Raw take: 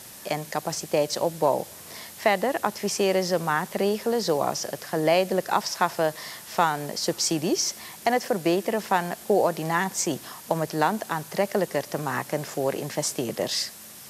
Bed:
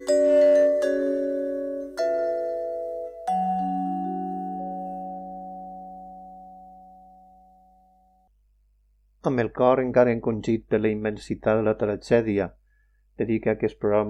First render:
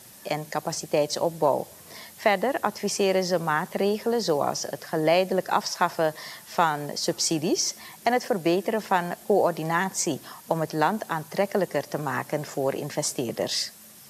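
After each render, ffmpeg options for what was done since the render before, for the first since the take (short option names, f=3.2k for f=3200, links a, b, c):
-af "afftdn=nr=6:nf=-44"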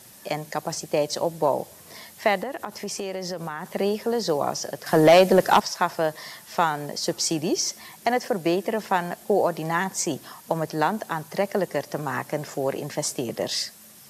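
-filter_complex "[0:a]asettb=1/sr,asplit=3[a][b][c];[a]atrim=end=2.434[d];[b]atrim=start=2.43:end=3.67,asetpts=PTS-STARTPTS,afade=t=in:d=0.004:c=qsin,afade=t=out:st=1.236:d=0.004:c=qsin,acompressor=threshold=-27dB:ratio=6:attack=3.2:release=140:knee=1:detection=peak[e];[c]atrim=start=3.666[f];[d][e]acrossfade=d=0.004:c1=hsin:c2=qsin[g];[g][f]acrossfade=d=0.004:c1=qsin:c2=hsin,asettb=1/sr,asplit=3[h][i][j];[h]atrim=end=4.864[k];[i]atrim=start=4.86:end=5.6,asetpts=PTS-STARTPTS,afade=t=in:d=0.004:c=qsin,afade=t=out:st=0.736:d=0.004:c=qsin,aeval=exprs='0.398*sin(PI/2*1.78*val(0)/0.398)':c=same[l];[j]atrim=start=5.596[m];[k][l]acrossfade=d=0.004:c1=hsin:c2=qsin[n];[n][m]acrossfade=d=0.004:c1=qsin:c2=hsin"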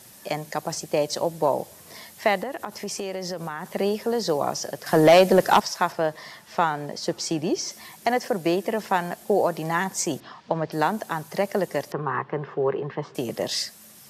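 -filter_complex "[0:a]asettb=1/sr,asplit=3[a][b][c];[a]atrim=end=5.924[d];[b]atrim=start=5.92:end=7.71,asetpts=PTS-STARTPTS,afade=t=in:d=0.004:c=qsin,afade=t=out:st=1.786:d=0.004:c=qsin,lowpass=f=3.6k:p=1[e];[c]atrim=start=7.706[f];[d][e]acrossfade=d=0.004:c1=hsin:c2=qsin[g];[g][f]acrossfade=d=0.004:c1=qsin:c2=hsin,asettb=1/sr,asplit=3[h][i][j];[h]atrim=end=10.204[k];[i]atrim=start=10.2:end=10.72,asetpts=PTS-STARTPTS,afade=t=in:d=0.004:c=qsin,afade=t=out:st=0.516:d=0.004:c=qsin,lowpass=f=4.5k:w=0.5412,lowpass=f=4.5k:w=1.3066[l];[j]atrim=start=10.716[m];[k][l]acrossfade=d=0.004:c1=hsin:c2=qsin[n];[n][m]acrossfade=d=0.004:c1=qsin:c2=hsin,asettb=1/sr,asplit=3[o][p][q];[o]atrim=end=11.924[r];[p]atrim=start=11.92:end=13.15,asetpts=PTS-STARTPTS,afade=t=in:d=0.004:c=qsin,afade=t=out:st=1.226:d=0.004:c=qsin,highpass=120,equalizer=f=140:t=q:w=4:g=4,equalizer=f=260:t=q:w=4:g=-8,equalizer=f=410:t=q:w=4:g=8,equalizer=f=620:t=q:w=4:g=-9,equalizer=f=1.1k:t=q:w=4:g=7,equalizer=f=2.3k:t=q:w=4:g=-7,lowpass=f=2.8k:w=0.5412,lowpass=f=2.8k:w=1.3066[s];[q]atrim=start=13.146[t];[r][s]acrossfade=d=0.004:c1=hsin:c2=qsin[u];[u][t]acrossfade=d=0.004:c1=qsin:c2=hsin"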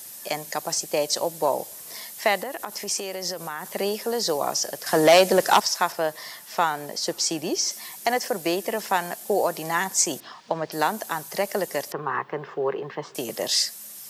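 -filter_complex "[0:a]acrossover=split=9400[a][b];[b]acompressor=threshold=-56dB:ratio=4:attack=1:release=60[c];[a][c]amix=inputs=2:normalize=0,aemphasis=mode=production:type=bsi"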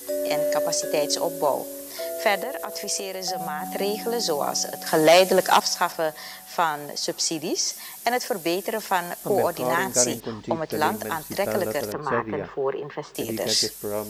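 -filter_complex "[1:a]volume=-7.5dB[a];[0:a][a]amix=inputs=2:normalize=0"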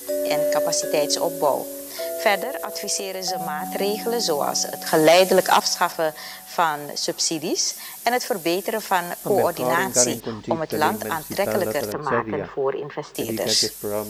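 -af "volume=2.5dB,alimiter=limit=-3dB:level=0:latency=1"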